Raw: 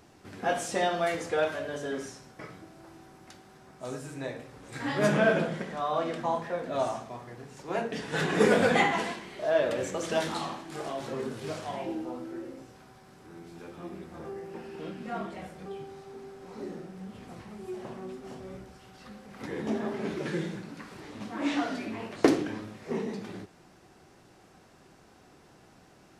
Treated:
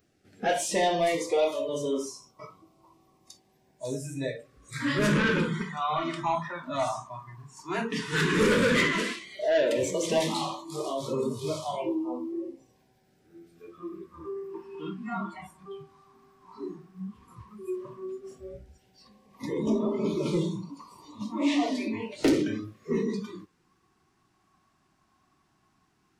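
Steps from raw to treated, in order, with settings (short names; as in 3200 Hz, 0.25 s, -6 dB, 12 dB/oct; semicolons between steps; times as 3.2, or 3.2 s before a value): soft clip -23 dBFS, distortion -10 dB; LFO notch sine 0.11 Hz 480–1700 Hz; spectral noise reduction 18 dB; gain +6.5 dB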